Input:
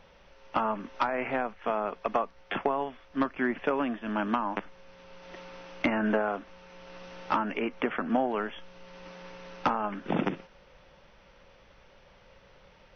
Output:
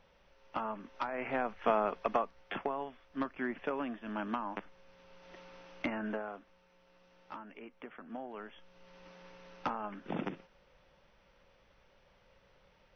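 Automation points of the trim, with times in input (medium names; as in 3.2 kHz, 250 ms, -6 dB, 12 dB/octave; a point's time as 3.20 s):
1.06 s -9 dB
1.68 s +1 dB
2.66 s -8 dB
5.79 s -8 dB
6.95 s -19 dB
7.99 s -19 dB
8.88 s -9 dB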